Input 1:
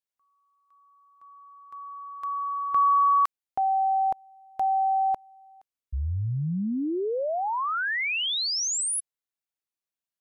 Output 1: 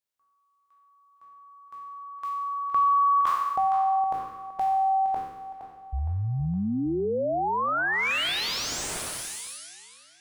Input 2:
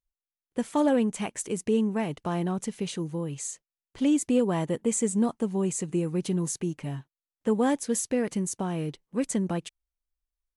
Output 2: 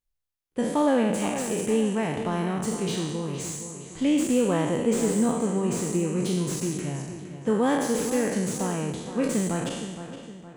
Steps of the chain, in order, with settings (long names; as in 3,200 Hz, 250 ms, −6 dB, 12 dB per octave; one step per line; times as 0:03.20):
peak hold with a decay on every bin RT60 1.17 s
feedback echo with a low-pass in the loop 465 ms, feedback 46%, low-pass 4,100 Hz, level −10.5 dB
slew-rate limiting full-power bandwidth 150 Hz